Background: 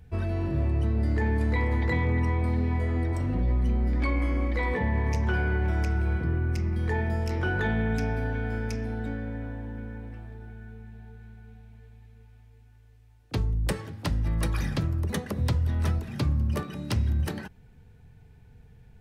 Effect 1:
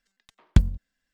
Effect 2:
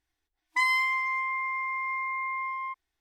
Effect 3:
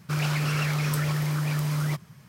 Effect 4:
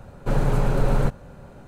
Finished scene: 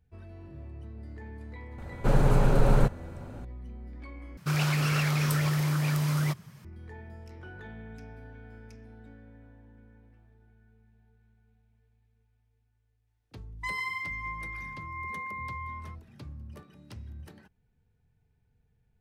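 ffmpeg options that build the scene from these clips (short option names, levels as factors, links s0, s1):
-filter_complex "[0:a]volume=0.126[s0];[2:a]aecho=1:1:143:0.531[s1];[s0]asplit=2[s2][s3];[s2]atrim=end=4.374[s4];[3:a]atrim=end=2.28,asetpts=PTS-STARTPTS,volume=0.944[s5];[s3]atrim=start=6.646[s6];[4:a]atrim=end=1.67,asetpts=PTS-STARTPTS,volume=0.891,afade=t=in:d=0.004:c=hsin,afade=t=out:st=1.666:d=0.004:c=hsin,adelay=1780[s7];[s1]atrim=end=3,asetpts=PTS-STARTPTS,volume=0.335,afade=t=in:d=0.004:c=hsin,afade=t=out:st=2.996:d=0.004:c=hsin,adelay=13070[s8];[s4][s5]acrossfade=d=0.004:c1=hsin:c2=hsin[s9];[s9][s6]acrossfade=d=0.004:c1=hsin:c2=hsin[s10];[s10][s7][s8]amix=inputs=3:normalize=0"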